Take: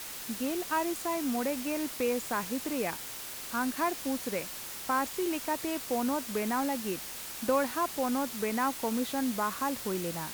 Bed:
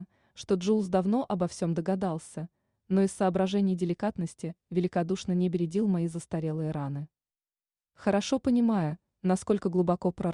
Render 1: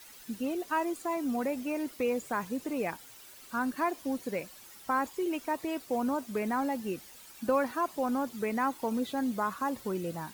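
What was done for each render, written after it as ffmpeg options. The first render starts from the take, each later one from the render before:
-af "afftdn=nr=13:nf=-41"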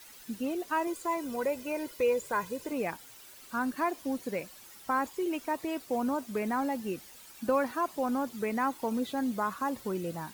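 -filter_complex "[0:a]asettb=1/sr,asplit=3[s0][s1][s2];[s0]atrim=end=0.874[s3];[s1]atrim=start=0.87:end=2.72,asetpts=PTS-STARTPTS,afade=t=in:d=0.004:c=qsin,afade=t=out:st=1.846:d=0.004:c=qsin,aecho=1:1:2:0.58,atrim=end_sample=81585[s4];[s2]atrim=start=2.716[s5];[s3][s4]acrossfade=d=0.004:c1=hsin:c2=qsin[s6];[s6][s5]acrossfade=d=0.004:c1=qsin:c2=hsin"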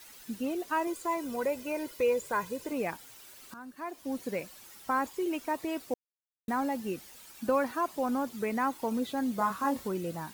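-filter_complex "[0:a]asettb=1/sr,asplit=3[s0][s1][s2];[s0]atrim=end=9.364[s3];[s1]atrim=start=9.36:end=9.88,asetpts=PTS-STARTPTS,afade=t=in:d=0.004:c=qsin,afade=t=out:st=0.516:d=0.004:c=qsin,asplit=2[s4][s5];[s5]adelay=25,volume=0.708[s6];[s4][s6]amix=inputs=2:normalize=0,atrim=end_sample=22932[s7];[s2]atrim=start=9.876[s8];[s3][s7]acrossfade=d=0.004:c1=hsin:c2=qsin[s9];[s9][s8]acrossfade=d=0.004:c1=qsin:c2=hsin,asplit=4[s10][s11][s12][s13];[s10]atrim=end=3.54,asetpts=PTS-STARTPTS,afade=t=out:st=3.536:d=0.004:c=hsin:silence=0.16788[s14];[s11]atrim=start=3.54:end=5.94,asetpts=PTS-STARTPTS,afade=t=in:d=0.66:c=qua:silence=0.16788,afade=t=out:st=2.396:d=0.004:c=hsin[s15];[s12]atrim=start=5.94:end=6.48,asetpts=PTS-STARTPTS,volume=0[s16];[s13]atrim=start=6.48,asetpts=PTS-STARTPTS,afade=t=in:d=0.004:c=hsin[s17];[s14][s15][s16][s17]concat=n=4:v=0:a=1"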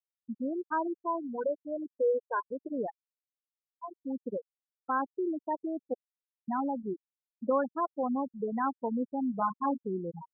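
-af "lowpass=f=2000:w=0.5412,lowpass=f=2000:w=1.3066,afftfilt=real='re*gte(hypot(re,im),0.1)':imag='im*gte(hypot(re,im),0.1)':win_size=1024:overlap=0.75"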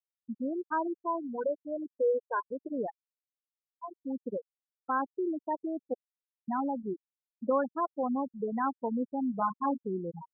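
-af anull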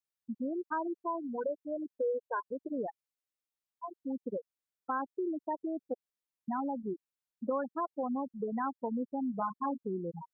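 -af "acompressor=threshold=0.0224:ratio=2"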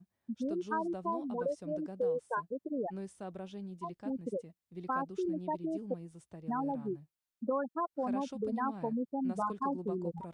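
-filter_complex "[1:a]volume=0.133[s0];[0:a][s0]amix=inputs=2:normalize=0"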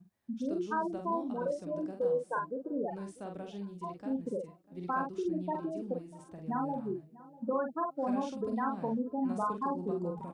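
-filter_complex "[0:a]asplit=2[s0][s1];[s1]adelay=45,volume=0.596[s2];[s0][s2]amix=inputs=2:normalize=0,asplit=2[s3][s4];[s4]adelay=644,lowpass=f=2000:p=1,volume=0.1,asplit=2[s5][s6];[s6]adelay=644,lowpass=f=2000:p=1,volume=0.36,asplit=2[s7][s8];[s8]adelay=644,lowpass=f=2000:p=1,volume=0.36[s9];[s3][s5][s7][s9]amix=inputs=4:normalize=0"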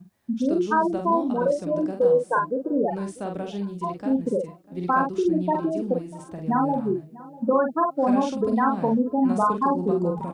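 -af "volume=3.76"

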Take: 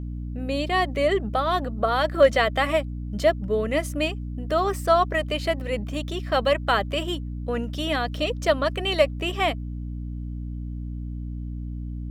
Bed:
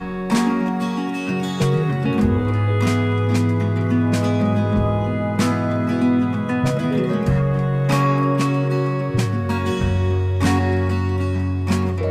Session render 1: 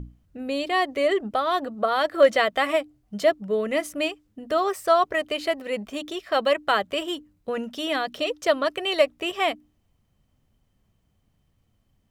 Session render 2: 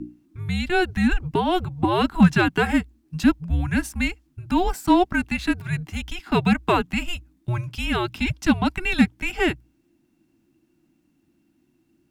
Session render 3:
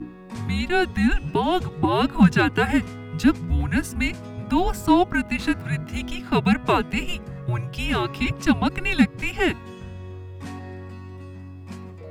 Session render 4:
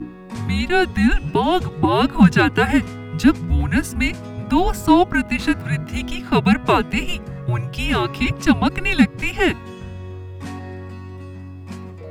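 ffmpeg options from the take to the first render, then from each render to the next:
-af "bandreject=f=60:t=h:w=6,bandreject=f=120:t=h:w=6,bandreject=f=180:t=h:w=6,bandreject=f=240:t=h:w=6,bandreject=f=300:t=h:w=6"
-filter_complex "[0:a]afreqshift=-360,asplit=2[s0][s1];[s1]asoftclip=type=hard:threshold=0.2,volume=0.335[s2];[s0][s2]amix=inputs=2:normalize=0"
-filter_complex "[1:a]volume=0.126[s0];[0:a][s0]amix=inputs=2:normalize=0"
-af "volume=1.58,alimiter=limit=0.794:level=0:latency=1"

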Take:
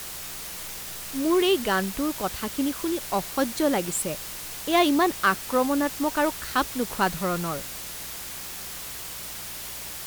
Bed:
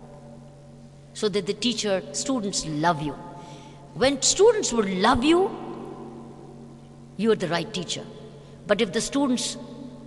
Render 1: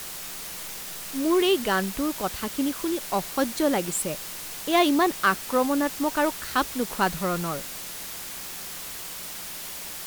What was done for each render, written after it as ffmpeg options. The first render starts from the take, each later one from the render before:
-af "bandreject=f=60:t=h:w=4,bandreject=f=120:t=h:w=4"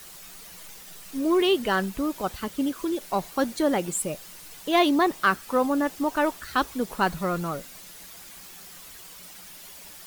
-af "afftdn=nr=10:nf=-37"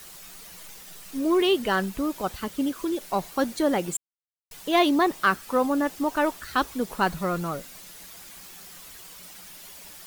-filter_complex "[0:a]asplit=3[s0][s1][s2];[s0]atrim=end=3.97,asetpts=PTS-STARTPTS,afade=t=out:st=3.966:d=0.004:c=hsin[s3];[s1]atrim=start=3.97:end=4.51,asetpts=PTS-STARTPTS,volume=0[s4];[s2]atrim=start=4.51,asetpts=PTS-STARTPTS,afade=t=in:d=0.004:c=hsin[s5];[s3][s4][s5]concat=n=3:v=0:a=1"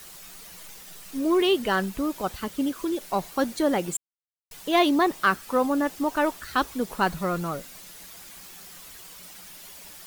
-af anull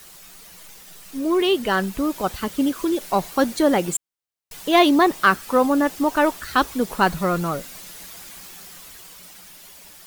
-af "dynaudnorm=f=330:g=11:m=2.11"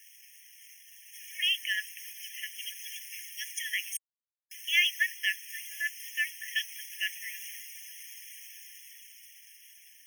-af "aeval=exprs='sgn(val(0))*max(abs(val(0))-0.00501,0)':c=same,afftfilt=real='re*eq(mod(floor(b*sr/1024/1700),2),1)':imag='im*eq(mod(floor(b*sr/1024/1700),2),1)':win_size=1024:overlap=0.75"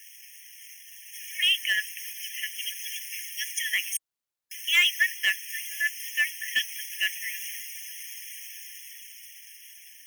-filter_complex "[0:a]aeval=exprs='0.266*(cos(1*acos(clip(val(0)/0.266,-1,1)))-cos(1*PI/2))+0.00266*(cos(4*acos(clip(val(0)/0.266,-1,1)))-cos(4*PI/2))+0.0133*(cos(5*acos(clip(val(0)/0.266,-1,1)))-cos(5*PI/2))+0.00299*(cos(6*acos(clip(val(0)/0.266,-1,1)))-cos(6*PI/2))':c=same,asplit=2[s0][s1];[s1]asoftclip=type=tanh:threshold=0.0841,volume=0.668[s2];[s0][s2]amix=inputs=2:normalize=0"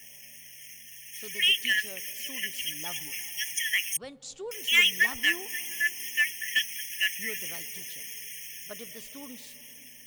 -filter_complex "[1:a]volume=0.075[s0];[0:a][s0]amix=inputs=2:normalize=0"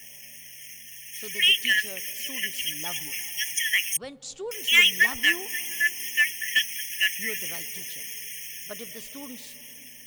-af "volume=1.5"

